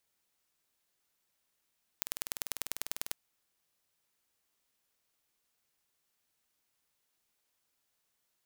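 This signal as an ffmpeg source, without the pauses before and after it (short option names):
-f lavfi -i "aevalsrc='0.562*eq(mod(n,2194),0)*(0.5+0.5*eq(mod(n,4388),0))':d=1.11:s=44100"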